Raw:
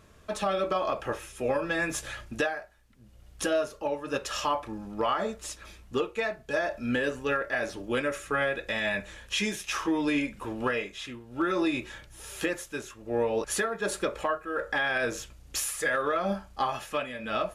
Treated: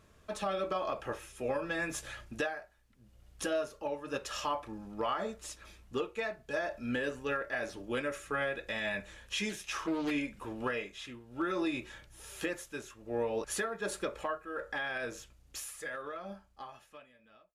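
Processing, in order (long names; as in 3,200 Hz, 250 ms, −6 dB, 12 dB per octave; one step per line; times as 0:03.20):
fade-out on the ending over 3.67 s
0:09.49–0:10.11: highs frequency-modulated by the lows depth 0.26 ms
level −6 dB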